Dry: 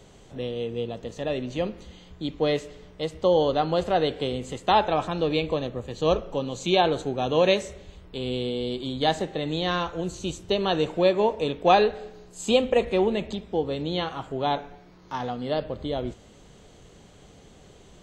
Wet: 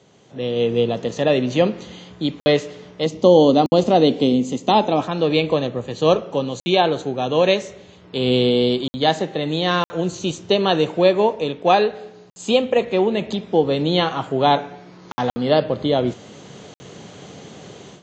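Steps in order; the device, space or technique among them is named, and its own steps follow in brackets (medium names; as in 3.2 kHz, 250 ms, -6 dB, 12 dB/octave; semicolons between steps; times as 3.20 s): call with lost packets (high-pass 110 Hz 24 dB/octave; resampled via 16 kHz; level rider gain up to 15 dB; lost packets of 60 ms); 3.06–5.01 s: fifteen-band graphic EQ 250 Hz +12 dB, 1.6 kHz -11 dB, 6.3 kHz +6 dB; trim -2 dB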